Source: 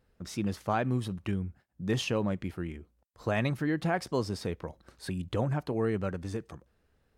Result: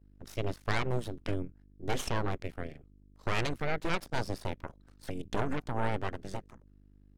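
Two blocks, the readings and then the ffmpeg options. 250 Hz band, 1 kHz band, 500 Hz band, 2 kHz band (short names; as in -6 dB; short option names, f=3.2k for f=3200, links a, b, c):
-7.0 dB, 0.0 dB, -3.5 dB, +0.5 dB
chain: -af "aeval=exprs='val(0)+0.00501*(sin(2*PI*50*n/s)+sin(2*PI*2*50*n/s)/2+sin(2*PI*3*50*n/s)/3+sin(2*PI*4*50*n/s)/4+sin(2*PI*5*50*n/s)/5)':c=same,aeval=exprs='0.168*(cos(1*acos(clip(val(0)/0.168,-1,1)))-cos(1*PI/2))+0.0668*(cos(3*acos(clip(val(0)/0.168,-1,1)))-cos(3*PI/2))+0.0335*(cos(6*acos(clip(val(0)/0.168,-1,1)))-cos(6*PI/2))':c=same,volume=1.5dB"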